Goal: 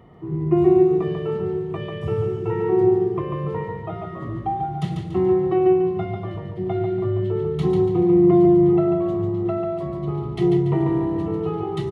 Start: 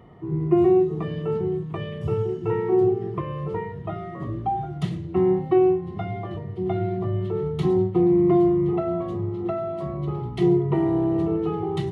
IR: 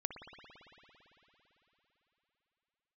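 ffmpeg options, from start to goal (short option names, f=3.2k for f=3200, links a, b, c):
-af "aecho=1:1:143|286|429|572|715:0.562|0.231|0.0945|0.0388|0.0159"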